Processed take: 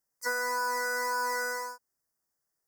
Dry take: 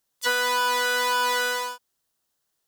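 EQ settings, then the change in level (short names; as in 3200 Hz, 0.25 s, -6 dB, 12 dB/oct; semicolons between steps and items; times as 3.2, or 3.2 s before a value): elliptic band-stop 2000–4900 Hz, stop band 80 dB; -6.0 dB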